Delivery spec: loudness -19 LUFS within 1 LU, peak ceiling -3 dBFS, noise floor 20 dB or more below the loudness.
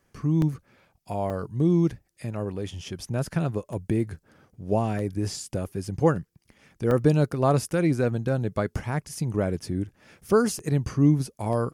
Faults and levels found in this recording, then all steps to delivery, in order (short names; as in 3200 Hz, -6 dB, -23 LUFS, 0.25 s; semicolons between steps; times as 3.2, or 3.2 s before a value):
dropouts 8; longest dropout 1.5 ms; loudness -26.0 LUFS; peak -8.0 dBFS; loudness target -19.0 LUFS
-> interpolate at 0.42/1.3/3.73/4.99/6.16/6.91/10.59/11.53, 1.5 ms; gain +7 dB; limiter -3 dBFS